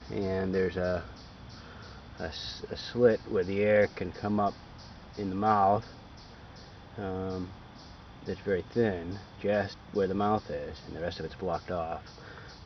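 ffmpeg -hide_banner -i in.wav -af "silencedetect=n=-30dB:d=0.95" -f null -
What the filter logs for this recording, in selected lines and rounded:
silence_start: 1.01
silence_end: 2.20 | silence_duration: 1.20
silence_start: 5.80
silence_end: 6.98 | silence_duration: 1.18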